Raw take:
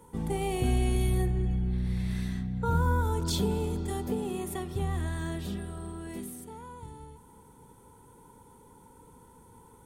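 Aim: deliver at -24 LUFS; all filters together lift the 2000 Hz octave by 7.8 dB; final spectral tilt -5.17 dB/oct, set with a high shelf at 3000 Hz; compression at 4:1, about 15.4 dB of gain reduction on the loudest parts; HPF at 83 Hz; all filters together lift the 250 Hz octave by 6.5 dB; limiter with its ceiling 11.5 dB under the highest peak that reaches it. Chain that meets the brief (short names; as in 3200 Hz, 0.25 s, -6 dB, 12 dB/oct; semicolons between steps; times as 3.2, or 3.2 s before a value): HPF 83 Hz; bell 250 Hz +9 dB; bell 2000 Hz +7.5 dB; high shelf 3000 Hz +8 dB; compressor 4:1, threshold -39 dBFS; gain +23 dB; limiter -15 dBFS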